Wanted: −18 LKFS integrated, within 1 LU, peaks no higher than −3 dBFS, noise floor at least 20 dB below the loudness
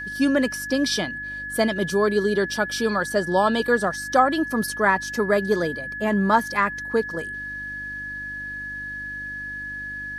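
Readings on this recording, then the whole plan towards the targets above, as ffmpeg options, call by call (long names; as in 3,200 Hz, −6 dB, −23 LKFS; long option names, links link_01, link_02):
mains hum 50 Hz; hum harmonics up to 300 Hz; level of the hum −44 dBFS; interfering tone 1,700 Hz; level of the tone −30 dBFS; integrated loudness −23.5 LKFS; sample peak −5.0 dBFS; target loudness −18.0 LKFS
→ -af "bandreject=frequency=50:width_type=h:width=4,bandreject=frequency=100:width_type=h:width=4,bandreject=frequency=150:width_type=h:width=4,bandreject=frequency=200:width_type=h:width=4,bandreject=frequency=250:width_type=h:width=4,bandreject=frequency=300:width_type=h:width=4"
-af "bandreject=frequency=1700:width=30"
-af "volume=5.5dB,alimiter=limit=-3dB:level=0:latency=1"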